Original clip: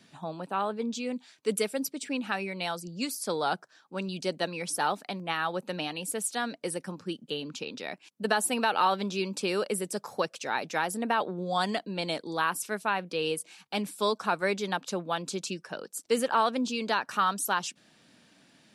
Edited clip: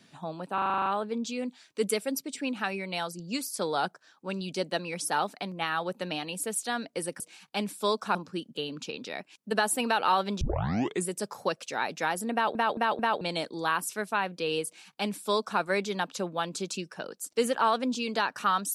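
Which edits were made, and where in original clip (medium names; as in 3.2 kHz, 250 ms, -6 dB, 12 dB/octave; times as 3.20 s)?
0.54 s: stutter 0.04 s, 9 plays
9.14 s: tape start 0.67 s
11.06 s: stutter in place 0.22 s, 4 plays
13.38–14.33 s: copy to 6.88 s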